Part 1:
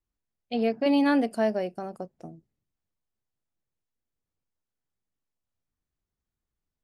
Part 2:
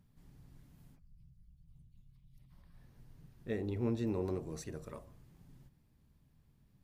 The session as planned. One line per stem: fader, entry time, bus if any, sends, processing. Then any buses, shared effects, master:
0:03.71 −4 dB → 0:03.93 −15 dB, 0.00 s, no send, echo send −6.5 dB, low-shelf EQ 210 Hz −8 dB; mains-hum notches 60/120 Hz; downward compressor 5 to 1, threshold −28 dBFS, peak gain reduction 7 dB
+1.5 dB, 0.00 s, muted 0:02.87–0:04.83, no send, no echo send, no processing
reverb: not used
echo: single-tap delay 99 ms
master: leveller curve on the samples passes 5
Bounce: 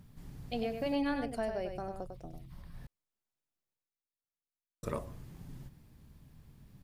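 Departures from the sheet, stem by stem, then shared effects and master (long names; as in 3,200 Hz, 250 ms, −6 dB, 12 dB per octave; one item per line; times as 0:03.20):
stem 2 +1.5 dB → +11.0 dB
master: missing leveller curve on the samples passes 5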